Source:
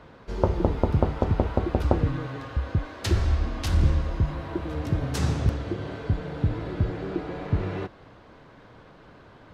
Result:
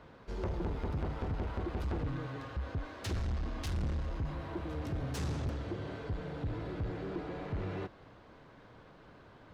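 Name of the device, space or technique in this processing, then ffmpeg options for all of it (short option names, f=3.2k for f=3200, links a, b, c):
saturation between pre-emphasis and de-emphasis: -af "highshelf=f=5.4k:g=12,asoftclip=type=tanh:threshold=-24.5dB,highshelf=f=5.4k:g=-12,volume=-6dB"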